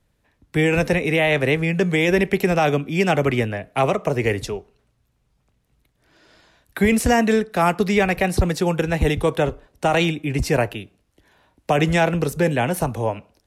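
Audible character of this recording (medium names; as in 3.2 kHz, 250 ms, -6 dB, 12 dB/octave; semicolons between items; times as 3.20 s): noise floor -67 dBFS; spectral tilt -5.0 dB/octave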